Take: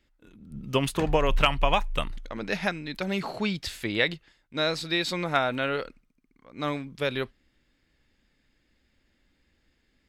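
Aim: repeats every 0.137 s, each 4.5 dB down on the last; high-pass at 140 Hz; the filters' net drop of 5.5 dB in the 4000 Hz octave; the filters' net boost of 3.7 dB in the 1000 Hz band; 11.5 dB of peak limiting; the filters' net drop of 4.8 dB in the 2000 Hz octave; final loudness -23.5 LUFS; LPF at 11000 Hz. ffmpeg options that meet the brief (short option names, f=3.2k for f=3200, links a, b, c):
-af "highpass=140,lowpass=11k,equalizer=f=1k:t=o:g=7,equalizer=f=2k:t=o:g=-7.5,equalizer=f=4k:t=o:g=-4.5,alimiter=limit=-17dB:level=0:latency=1,aecho=1:1:137|274|411|548|685|822|959|1096|1233:0.596|0.357|0.214|0.129|0.0772|0.0463|0.0278|0.0167|0.01,volume=6.5dB"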